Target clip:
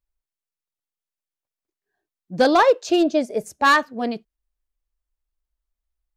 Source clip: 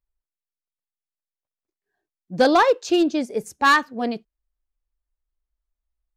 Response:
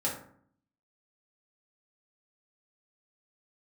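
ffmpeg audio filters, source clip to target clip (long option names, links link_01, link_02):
-filter_complex "[0:a]asettb=1/sr,asplit=3[link_01][link_02][link_03];[link_01]atrim=end=2.594[link_04];[link_02]atrim=start=2.59:end=3.85,asetpts=PTS-STARTPTS,afade=type=in:duration=0.004:curve=qsin,afade=type=out:start_time=1.256:duration=0.004:curve=qsin,equalizer=frequency=630:width=6.3:gain=13.5[link_05];[link_03]atrim=start=3.846[link_06];[link_04][link_05]acrossfade=duration=0.004:curve1=hsin:curve2=qsin[link_07];[link_07][link_06]acrossfade=duration=0.004:curve1=qsin:curve2=hsin"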